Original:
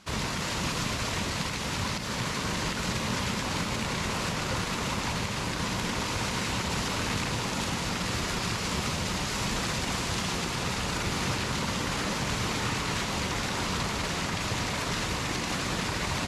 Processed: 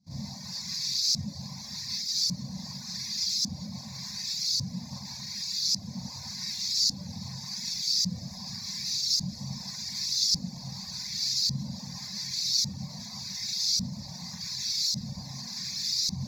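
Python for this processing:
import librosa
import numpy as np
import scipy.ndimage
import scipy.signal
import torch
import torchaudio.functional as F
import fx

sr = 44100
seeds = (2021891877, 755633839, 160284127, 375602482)

p1 = fx.schmitt(x, sr, flips_db=-37.5)
p2 = x + (p1 * librosa.db_to_amplitude(-4.0))
p3 = scipy.signal.sosfilt(scipy.signal.butter(2, 70.0, 'highpass', fs=sr, output='sos'), p2)
p4 = fx.low_shelf(p3, sr, hz=230.0, db=6.0)
p5 = fx.hum_notches(p4, sr, base_hz=60, count=3)
p6 = fx.doubler(p5, sr, ms=22.0, db=-11.5)
p7 = fx.rev_schroeder(p6, sr, rt60_s=0.31, comb_ms=30, drr_db=-8.5)
p8 = fx.dereverb_blind(p7, sr, rt60_s=0.83)
p9 = fx.fixed_phaser(p8, sr, hz=2000.0, stages=8)
p10 = fx.filter_lfo_bandpass(p9, sr, shape='saw_up', hz=0.87, low_hz=360.0, high_hz=4900.0, q=1.4)
y = fx.curve_eq(p10, sr, hz=(110.0, 160.0, 380.0, 1600.0, 3000.0, 4600.0, 11000.0), db=(0, 4, -23, -26, -17, 7, 9))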